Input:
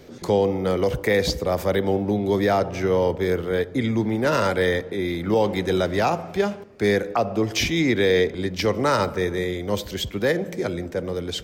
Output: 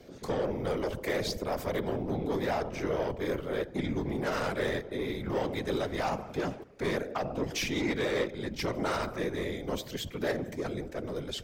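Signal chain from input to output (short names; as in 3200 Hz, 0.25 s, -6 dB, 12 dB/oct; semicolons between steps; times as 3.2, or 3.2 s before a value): soft clip -18.5 dBFS, distortion -12 dB; whisperiser; gain -7 dB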